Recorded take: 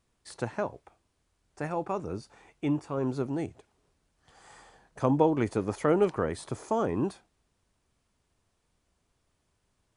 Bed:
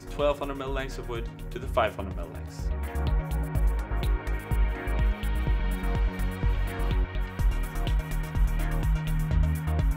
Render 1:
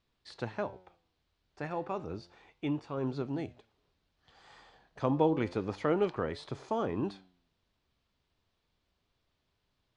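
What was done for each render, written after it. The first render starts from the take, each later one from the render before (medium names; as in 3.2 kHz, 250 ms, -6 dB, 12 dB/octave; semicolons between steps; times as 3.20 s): resonant low-pass 4 kHz, resonance Q 2; flange 0.31 Hz, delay 6.6 ms, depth 8.3 ms, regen +88%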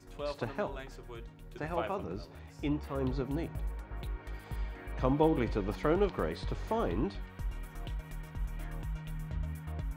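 add bed -12.5 dB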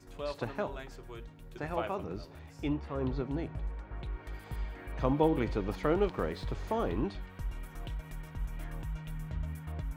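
2.74–4.13 s: distance through air 93 m; 6.06–6.53 s: hysteresis with a dead band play -53.5 dBFS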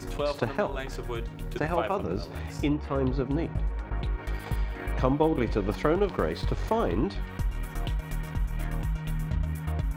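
transient shaper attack +5 dB, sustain -9 dB; level flattener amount 50%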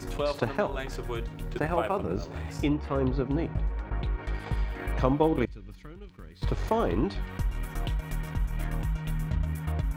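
1.51–2.51 s: decimation joined by straight lines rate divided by 4×; 3.03–4.57 s: distance through air 55 m; 5.45–6.42 s: amplifier tone stack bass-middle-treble 6-0-2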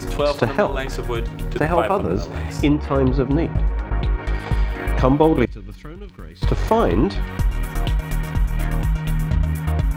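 trim +9.5 dB; peak limiter -1 dBFS, peak gain reduction 2 dB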